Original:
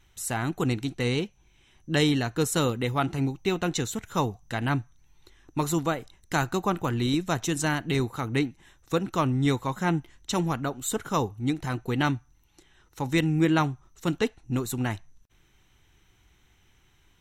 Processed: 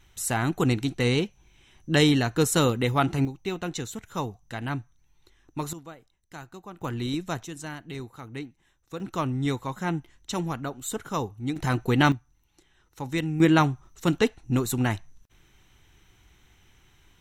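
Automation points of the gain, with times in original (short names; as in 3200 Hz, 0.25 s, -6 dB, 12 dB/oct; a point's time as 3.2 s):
+3 dB
from 3.25 s -4.5 dB
from 5.73 s -16.5 dB
from 6.81 s -4 dB
from 7.43 s -11 dB
from 9 s -3 dB
from 11.56 s +5 dB
from 12.12 s -4 dB
from 13.4 s +3.5 dB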